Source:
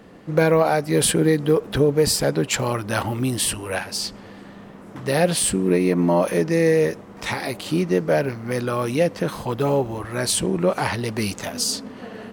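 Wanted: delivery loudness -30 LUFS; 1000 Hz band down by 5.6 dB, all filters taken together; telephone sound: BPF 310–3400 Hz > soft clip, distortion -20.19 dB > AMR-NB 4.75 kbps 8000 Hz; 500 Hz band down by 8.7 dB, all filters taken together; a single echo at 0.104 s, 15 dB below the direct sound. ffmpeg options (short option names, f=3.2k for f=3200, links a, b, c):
-af "highpass=310,lowpass=3.4k,equalizer=f=500:t=o:g=-8.5,equalizer=f=1k:t=o:g=-4,aecho=1:1:104:0.178,asoftclip=threshold=-17dB,volume=2dB" -ar 8000 -c:a libopencore_amrnb -b:a 4750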